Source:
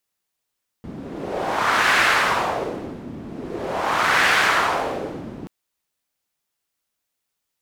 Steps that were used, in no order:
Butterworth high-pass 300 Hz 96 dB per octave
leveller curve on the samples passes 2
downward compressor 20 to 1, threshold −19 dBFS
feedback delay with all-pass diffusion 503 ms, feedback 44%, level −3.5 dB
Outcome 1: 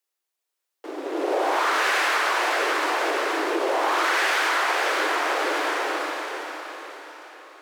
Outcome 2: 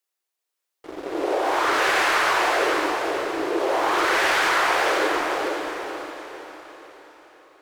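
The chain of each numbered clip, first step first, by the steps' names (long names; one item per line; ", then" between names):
leveller curve on the samples, then feedback delay with all-pass diffusion, then downward compressor, then Butterworth high-pass
Butterworth high-pass, then leveller curve on the samples, then downward compressor, then feedback delay with all-pass diffusion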